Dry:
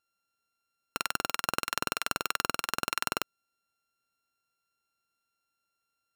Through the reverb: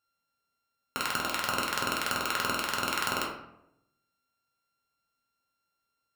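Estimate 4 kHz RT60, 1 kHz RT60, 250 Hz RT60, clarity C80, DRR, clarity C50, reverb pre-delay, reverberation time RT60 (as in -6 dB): 0.45 s, 0.75 s, 0.95 s, 7.5 dB, -2.5 dB, 5.0 dB, 3 ms, 0.80 s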